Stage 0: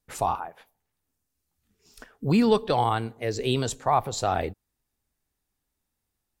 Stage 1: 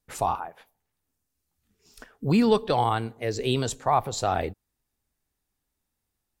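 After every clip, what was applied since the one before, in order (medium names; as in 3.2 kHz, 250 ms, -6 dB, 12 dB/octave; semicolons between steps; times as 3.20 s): no audible change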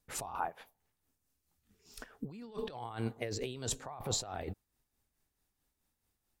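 compressor with a negative ratio -33 dBFS, ratio -1; tremolo 4.6 Hz, depth 51%; trim -5.5 dB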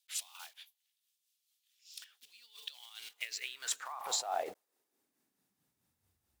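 block-companded coder 5-bit; high-pass sweep 3.3 kHz -> 67 Hz, 3.04–6.33 s; trim +1 dB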